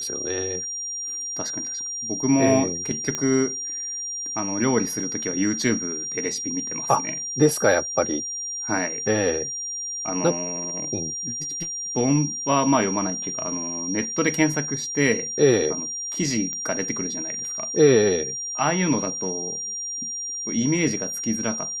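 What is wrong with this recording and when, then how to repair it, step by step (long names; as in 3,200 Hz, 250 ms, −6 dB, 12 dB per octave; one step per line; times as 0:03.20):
whistle 5,700 Hz −28 dBFS
0:03.15: click −11 dBFS
0:16.53: click −15 dBFS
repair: click removal
notch filter 5,700 Hz, Q 30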